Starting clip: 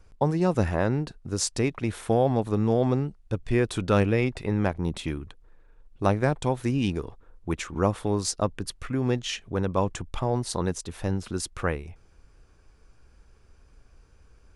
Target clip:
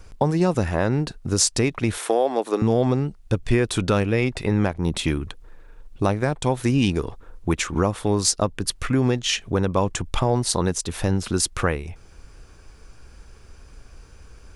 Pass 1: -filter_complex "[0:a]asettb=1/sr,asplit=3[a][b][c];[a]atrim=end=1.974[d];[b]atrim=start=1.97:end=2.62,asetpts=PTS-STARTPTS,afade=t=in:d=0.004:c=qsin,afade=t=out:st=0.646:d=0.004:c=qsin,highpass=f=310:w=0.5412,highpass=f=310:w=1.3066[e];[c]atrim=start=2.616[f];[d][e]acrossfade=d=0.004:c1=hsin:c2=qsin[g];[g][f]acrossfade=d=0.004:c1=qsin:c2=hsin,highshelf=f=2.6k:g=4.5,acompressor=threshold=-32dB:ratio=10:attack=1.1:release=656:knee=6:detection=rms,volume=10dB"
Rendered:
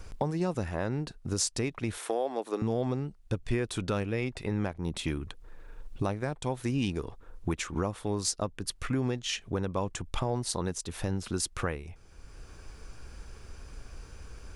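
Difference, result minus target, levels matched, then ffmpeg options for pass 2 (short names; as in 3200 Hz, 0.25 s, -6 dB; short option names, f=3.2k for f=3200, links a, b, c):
compressor: peak gain reduction +10.5 dB
-filter_complex "[0:a]asettb=1/sr,asplit=3[a][b][c];[a]atrim=end=1.974[d];[b]atrim=start=1.97:end=2.62,asetpts=PTS-STARTPTS,afade=t=in:d=0.004:c=qsin,afade=t=out:st=0.646:d=0.004:c=qsin,highpass=f=310:w=0.5412,highpass=f=310:w=1.3066[e];[c]atrim=start=2.616[f];[d][e]acrossfade=d=0.004:c1=hsin:c2=qsin[g];[g][f]acrossfade=d=0.004:c1=qsin:c2=hsin,highshelf=f=2.6k:g=4.5,acompressor=threshold=-20.5dB:ratio=10:attack=1.1:release=656:knee=6:detection=rms,volume=10dB"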